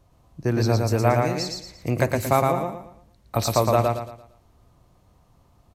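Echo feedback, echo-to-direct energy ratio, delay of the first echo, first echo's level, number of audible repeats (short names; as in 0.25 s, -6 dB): 35%, -2.5 dB, 0.114 s, -3.0 dB, 4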